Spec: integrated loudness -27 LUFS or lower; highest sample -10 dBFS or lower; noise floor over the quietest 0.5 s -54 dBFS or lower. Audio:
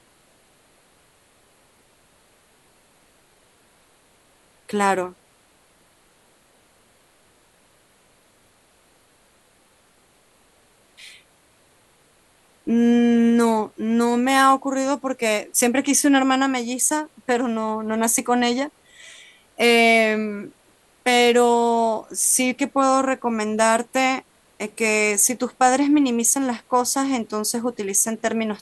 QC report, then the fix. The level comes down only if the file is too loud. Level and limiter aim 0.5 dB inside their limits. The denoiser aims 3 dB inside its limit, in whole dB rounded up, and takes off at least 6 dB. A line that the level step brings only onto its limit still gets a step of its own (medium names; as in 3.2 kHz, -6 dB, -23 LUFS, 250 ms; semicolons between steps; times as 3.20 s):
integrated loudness -19.5 LUFS: fail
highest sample -3.5 dBFS: fail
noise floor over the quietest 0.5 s -58 dBFS: pass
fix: trim -8 dB